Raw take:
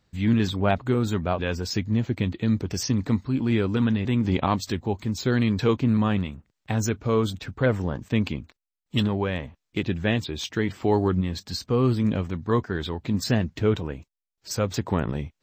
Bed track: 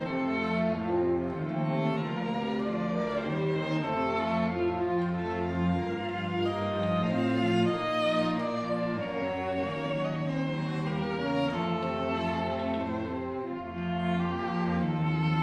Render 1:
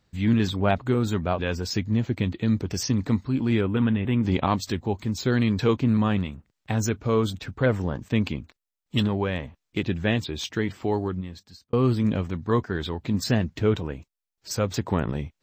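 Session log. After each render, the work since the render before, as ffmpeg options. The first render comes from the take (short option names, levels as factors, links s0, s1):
-filter_complex "[0:a]asettb=1/sr,asplit=3[s0][s1][s2];[s0]atrim=end=3.614[s3];[s1]atrim=start=3.61:end=4.23,asetpts=PTS-STARTPTS,afade=t=in:d=0.004:c=qsin,afade=t=out:st=0.616:d=0.004:c=qsin,asuperstop=centerf=5500:order=8:qfactor=1.1[s4];[s2]atrim=start=4.226[s5];[s3][s4]acrossfade=d=0.004:c1=hsin:c2=qsin[s6];[s6][s5]acrossfade=d=0.004:c1=qsin:c2=hsin,asplit=2[s7][s8];[s7]atrim=end=11.73,asetpts=PTS-STARTPTS,afade=t=out:st=10.48:d=1.25[s9];[s8]atrim=start=11.73,asetpts=PTS-STARTPTS,afade=t=in:d=0.004:c=hsin[s10];[s9][s10]concat=n=2:v=0:a=1"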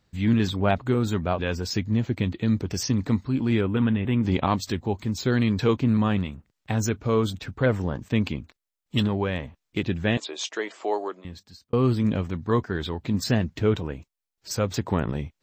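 -filter_complex "[0:a]asettb=1/sr,asplit=3[s0][s1][s2];[s0]atrim=end=10.174[s3];[s1]atrim=start=10.17:end=11.25,asetpts=PTS-STARTPTS,afade=t=in:d=0.004:c=qsin,afade=t=out:st=1.076:d=0.004:c=qsin,highpass=f=370:w=0.5412,highpass=f=370:w=1.3066,equalizer=f=640:t=q:w=4:g=8,equalizer=f=1100:t=q:w=4:g=4,equalizer=f=7000:t=q:w=4:g=8,lowpass=f=7900:w=0.5412,lowpass=f=7900:w=1.3066[s4];[s2]atrim=start=11.246[s5];[s3][s4]acrossfade=d=0.004:c1=hsin:c2=qsin[s6];[s6][s5]acrossfade=d=0.004:c1=qsin:c2=hsin"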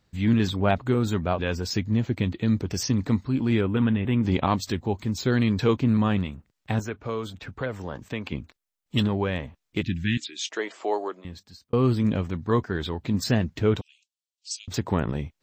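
-filter_complex "[0:a]asettb=1/sr,asplit=3[s0][s1][s2];[s0]atrim=end=6.794[s3];[s1]atrim=start=6.79:end=8.32,asetpts=PTS-STARTPTS,afade=t=in:d=0.004:c=qsin,afade=t=out:st=1.526:d=0.004:c=qsin,acrossover=split=410|2900[s4][s5][s6];[s4]acompressor=threshold=0.0178:ratio=4[s7];[s5]acompressor=threshold=0.0316:ratio=4[s8];[s6]acompressor=threshold=0.00398:ratio=4[s9];[s7][s8][s9]amix=inputs=3:normalize=0[s10];[s2]atrim=start=8.316[s11];[s3][s10]acrossfade=d=0.004:c1=hsin:c2=qsin[s12];[s12][s11]acrossfade=d=0.004:c1=qsin:c2=hsin,asettb=1/sr,asplit=3[s13][s14][s15];[s13]atrim=end=9.814[s16];[s14]atrim=start=9.81:end=10.5,asetpts=PTS-STARTPTS,afade=t=in:d=0.004:c=qsin,afade=t=out:st=0.686:d=0.004:c=qsin,asuperstop=centerf=720:order=8:qfactor=0.5[s17];[s15]atrim=start=10.496[s18];[s16][s17]acrossfade=d=0.004:c1=hsin:c2=qsin[s19];[s19][s18]acrossfade=d=0.004:c1=qsin:c2=hsin,asettb=1/sr,asplit=3[s20][s21][s22];[s20]atrim=end=13.814[s23];[s21]atrim=start=13.81:end=14.68,asetpts=PTS-STARTPTS,afade=t=in:d=0.004:c=qsin,afade=t=out:st=0.866:d=0.004:c=qsin,asuperpass=centerf=5000:order=12:qfactor=0.82[s24];[s22]atrim=start=14.676[s25];[s23][s24]acrossfade=d=0.004:c1=hsin:c2=qsin[s26];[s26][s25]acrossfade=d=0.004:c1=qsin:c2=hsin"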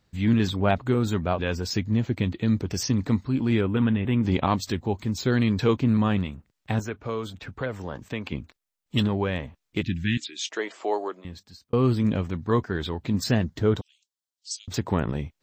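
-filter_complex "[0:a]asettb=1/sr,asplit=3[s0][s1][s2];[s0]atrim=end=13.434[s3];[s1]atrim=start=13.43:end=14.7,asetpts=PTS-STARTPTS,afade=t=in:d=0.004:c=qsin,afade=t=out:st=1.266:d=0.004:c=qsin,equalizer=f=2500:t=o:w=0.36:g=-10.5[s4];[s2]atrim=start=14.696[s5];[s3][s4]acrossfade=d=0.004:c1=hsin:c2=qsin[s6];[s6][s5]acrossfade=d=0.004:c1=qsin:c2=hsin"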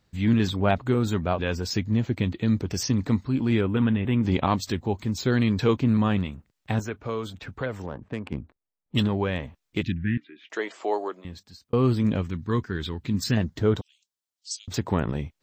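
-filter_complex "[0:a]asettb=1/sr,asplit=3[s0][s1][s2];[s0]atrim=end=7.864[s3];[s1]atrim=start=7.86:end=8.95,asetpts=PTS-STARTPTS,afade=t=in:d=0.004:c=qsin,afade=t=out:st=1.086:d=0.004:c=qsin,adynamicsmooth=sensitivity=1.5:basefreq=1100[s4];[s2]atrim=start=8.946[s5];[s3][s4]acrossfade=d=0.004:c1=hsin:c2=qsin[s6];[s6][s5]acrossfade=d=0.004:c1=qsin:c2=hsin,asettb=1/sr,asplit=3[s7][s8][s9];[s7]atrim=end=9.924[s10];[s8]atrim=start=9.92:end=10.5,asetpts=PTS-STARTPTS,afade=t=in:d=0.004:c=qsin,afade=t=out:st=0.576:d=0.004:c=qsin,lowpass=f=1900:w=0.5412,lowpass=f=1900:w=1.3066[s11];[s9]atrim=start=10.496[s12];[s10][s11]acrossfade=d=0.004:c1=hsin:c2=qsin[s13];[s13][s12]acrossfade=d=0.004:c1=qsin:c2=hsin,asettb=1/sr,asplit=3[s14][s15][s16];[s14]atrim=end=12.224[s17];[s15]atrim=start=12.22:end=13.37,asetpts=PTS-STARTPTS,afade=t=in:d=0.004:c=qsin,afade=t=out:st=1.146:d=0.004:c=qsin,equalizer=f=670:t=o:w=1:g=-12.5[s18];[s16]atrim=start=13.366[s19];[s17][s18]acrossfade=d=0.004:c1=hsin:c2=qsin[s20];[s20][s19]acrossfade=d=0.004:c1=qsin:c2=hsin"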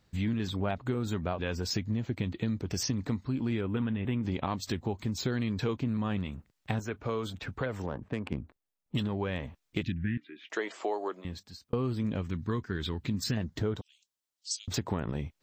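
-af "acompressor=threshold=0.0398:ratio=6"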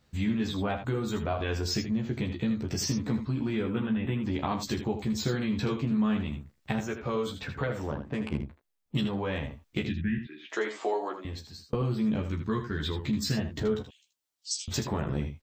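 -filter_complex "[0:a]asplit=2[s0][s1];[s1]adelay=14,volume=0.75[s2];[s0][s2]amix=inputs=2:normalize=0,aecho=1:1:32|79:0.188|0.355"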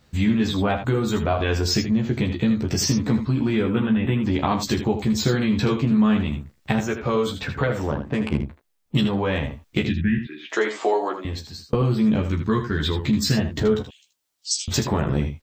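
-af "volume=2.66"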